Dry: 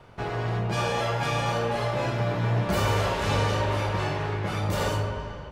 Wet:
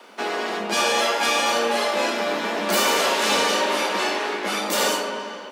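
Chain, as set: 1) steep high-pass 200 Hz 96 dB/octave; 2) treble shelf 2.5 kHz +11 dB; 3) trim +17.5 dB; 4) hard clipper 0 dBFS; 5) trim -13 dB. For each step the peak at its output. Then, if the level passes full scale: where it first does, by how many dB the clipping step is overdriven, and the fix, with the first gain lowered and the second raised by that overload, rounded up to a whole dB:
-15.5 dBFS, -11.0 dBFS, +6.5 dBFS, 0.0 dBFS, -13.0 dBFS; step 3, 6.5 dB; step 3 +10.5 dB, step 5 -6 dB

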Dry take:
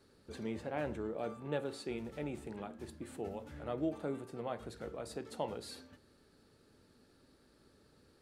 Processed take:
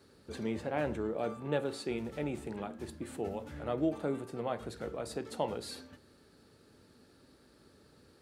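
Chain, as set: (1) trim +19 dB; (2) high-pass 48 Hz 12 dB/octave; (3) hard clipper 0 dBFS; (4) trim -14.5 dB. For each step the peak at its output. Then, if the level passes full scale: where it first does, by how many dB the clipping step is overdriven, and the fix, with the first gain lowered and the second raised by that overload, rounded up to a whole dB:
-4.5 dBFS, -4.0 dBFS, -4.0 dBFS, -18.5 dBFS; nothing clips

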